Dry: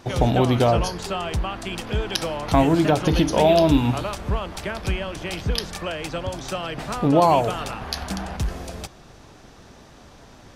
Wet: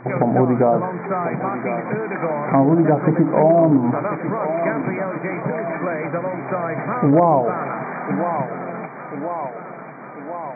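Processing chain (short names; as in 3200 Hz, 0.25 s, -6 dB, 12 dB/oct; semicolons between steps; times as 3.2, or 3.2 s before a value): on a send: thinning echo 1.042 s, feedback 59%, high-pass 220 Hz, level -11 dB; on the sum: treble ducked by the level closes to 860 Hz, closed at -13 dBFS; in parallel at +1 dB: compressor 4:1, threshold -32 dBFS, peak gain reduction 16 dB; on the sum: hard clip -8.5 dBFS, distortion -27 dB; FFT band-pass 120–2400 Hz; ending taper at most 490 dB/s; gain +2 dB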